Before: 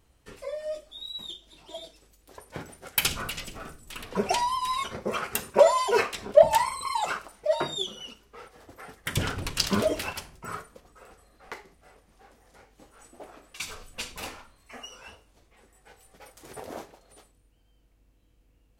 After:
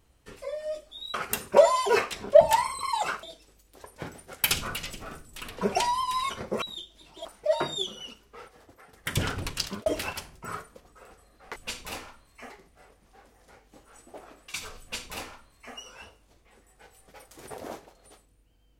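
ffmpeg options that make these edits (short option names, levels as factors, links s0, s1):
-filter_complex "[0:a]asplit=9[s0][s1][s2][s3][s4][s5][s6][s7][s8];[s0]atrim=end=1.142[s9];[s1]atrim=start=5.158:end=7.252[s10];[s2]atrim=start=1.768:end=5.162[s11];[s3]atrim=start=1.138:end=1.772[s12];[s4]atrim=start=7.248:end=8.93,asetpts=PTS-STARTPTS,afade=t=out:st=1.162:d=0.52:silence=0.223872[s13];[s5]atrim=start=8.93:end=9.86,asetpts=PTS-STARTPTS,afade=t=in:d=0.004:c=hsin:silence=0.223872,afade=t=out:st=0.5:d=0.43[s14];[s6]atrim=start=9.86:end=11.562,asetpts=PTS-STARTPTS,afade=t=in:d=0.004:c=hsin[s15];[s7]atrim=start=13.868:end=14.812[s16];[s8]atrim=start=11.558[s17];[s9][s10]acrossfade=d=0.004:c1=hsin:c2=hsin[s18];[s18][s11]acrossfade=d=0.004:c1=hsin:c2=hsin[s19];[s19][s12]acrossfade=d=0.004:c1=hsin:c2=hsin[s20];[s13][s14][s15]concat=n=3:v=0:a=1[s21];[s20][s21]acrossfade=d=0.004:c1=hsin:c2=hsin[s22];[s22][s16]acrossfade=d=0.004:c1=hsin:c2=hsin[s23];[s23][s17]acrossfade=d=0.004:c1=hsin:c2=hsin"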